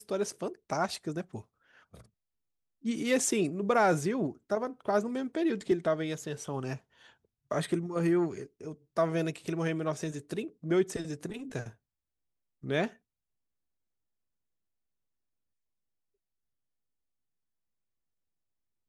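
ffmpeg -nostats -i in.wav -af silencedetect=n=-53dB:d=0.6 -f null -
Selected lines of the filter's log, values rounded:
silence_start: 2.06
silence_end: 2.83 | silence_duration: 0.78
silence_start: 11.73
silence_end: 12.63 | silence_duration: 0.90
silence_start: 12.96
silence_end: 18.89 | silence_duration: 5.93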